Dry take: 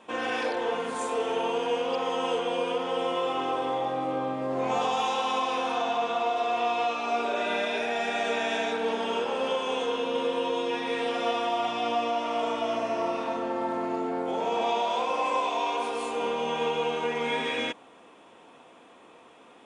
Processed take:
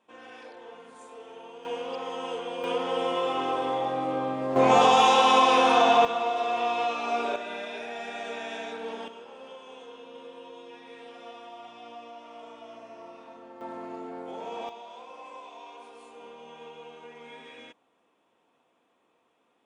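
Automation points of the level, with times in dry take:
−17 dB
from 0:01.65 −6 dB
from 0:02.64 +0.5 dB
from 0:04.56 +8.5 dB
from 0:06.05 −0.5 dB
from 0:07.36 −8 dB
from 0:09.08 −17 dB
from 0:13.61 −9 dB
from 0:14.69 −17.5 dB

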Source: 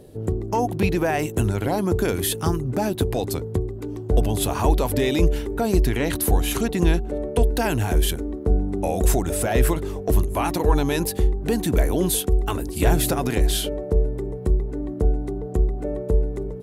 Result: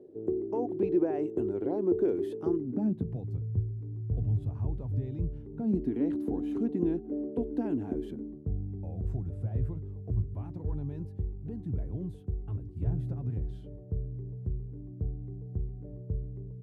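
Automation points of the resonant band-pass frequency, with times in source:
resonant band-pass, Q 3.7
0:02.49 360 Hz
0:03.34 110 Hz
0:05.31 110 Hz
0:05.90 280 Hz
0:08.08 280 Hz
0:08.52 110 Hz

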